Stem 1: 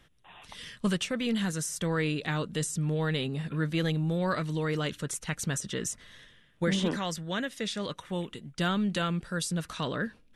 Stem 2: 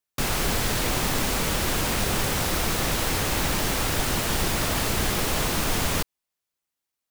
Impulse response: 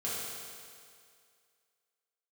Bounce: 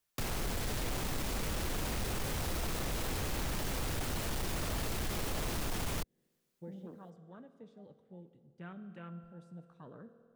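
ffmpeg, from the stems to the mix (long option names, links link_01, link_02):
-filter_complex "[0:a]afwtdn=0.0251,highshelf=frequency=3000:gain=-9,volume=-19.5dB,asplit=2[link_01][link_02];[link_02]volume=-14dB[link_03];[1:a]asoftclip=type=tanh:threshold=-21dB,volume=3dB[link_04];[2:a]atrim=start_sample=2205[link_05];[link_03][link_05]afir=irnorm=-1:irlink=0[link_06];[link_01][link_04][link_06]amix=inputs=3:normalize=0,acrossover=split=81|750[link_07][link_08][link_09];[link_07]acompressor=threshold=-34dB:ratio=4[link_10];[link_08]acompressor=threshold=-39dB:ratio=4[link_11];[link_09]acompressor=threshold=-40dB:ratio=4[link_12];[link_10][link_11][link_12]amix=inputs=3:normalize=0,asoftclip=type=tanh:threshold=-28dB"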